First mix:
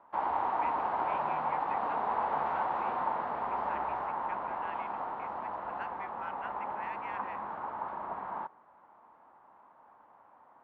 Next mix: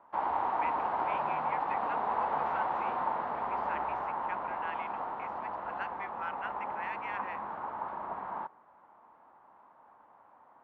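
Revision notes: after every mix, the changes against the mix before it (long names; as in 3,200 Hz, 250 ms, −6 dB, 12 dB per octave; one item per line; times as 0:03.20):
speech +4.5 dB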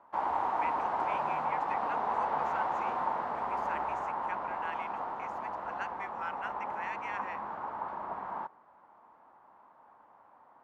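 master: remove low-pass filter 4,100 Hz 24 dB per octave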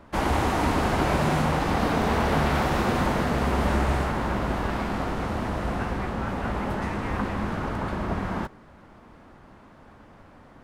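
background: remove resonant band-pass 920 Hz, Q 3.6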